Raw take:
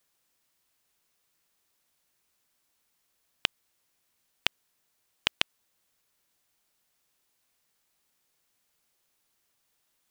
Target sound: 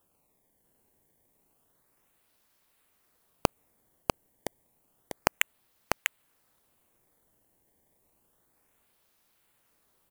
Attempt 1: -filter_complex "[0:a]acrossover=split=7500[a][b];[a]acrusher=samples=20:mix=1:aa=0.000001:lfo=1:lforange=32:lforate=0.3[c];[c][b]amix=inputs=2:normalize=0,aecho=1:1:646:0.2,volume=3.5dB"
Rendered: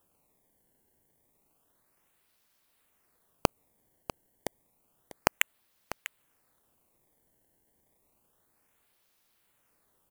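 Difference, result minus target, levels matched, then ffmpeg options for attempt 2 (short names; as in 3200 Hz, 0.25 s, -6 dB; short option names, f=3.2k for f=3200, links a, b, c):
echo-to-direct -10 dB
-filter_complex "[0:a]acrossover=split=7500[a][b];[a]acrusher=samples=20:mix=1:aa=0.000001:lfo=1:lforange=32:lforate=0.3[c];[c][b]amix=inputs=2:normalize=0,aecho=1:1:646:0.631,volume=3.5dB"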